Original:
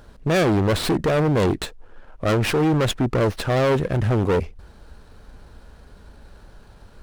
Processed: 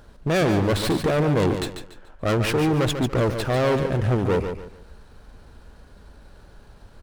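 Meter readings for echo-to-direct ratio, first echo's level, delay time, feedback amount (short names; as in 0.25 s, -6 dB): -7.5 dB, -8.0 dB, 0.144 s, 30%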